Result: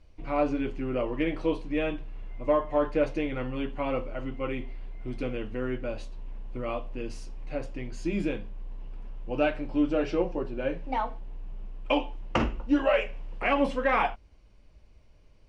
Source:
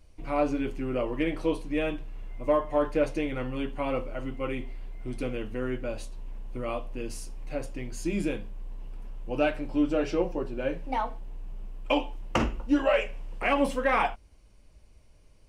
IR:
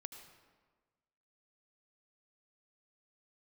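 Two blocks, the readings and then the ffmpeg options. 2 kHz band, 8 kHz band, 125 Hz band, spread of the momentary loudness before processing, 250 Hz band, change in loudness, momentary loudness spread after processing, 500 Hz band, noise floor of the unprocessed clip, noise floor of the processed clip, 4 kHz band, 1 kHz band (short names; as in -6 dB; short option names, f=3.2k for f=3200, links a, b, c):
0.0 dB, n/a, 0.0 dB, 18 LU, 0.0 dB, 0.0 dB, 18 LU, 0.0 dB, -56 dBFS, -56 dBFS, -1.0 dB, 0.0 dB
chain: -af "lowpass=4.7k"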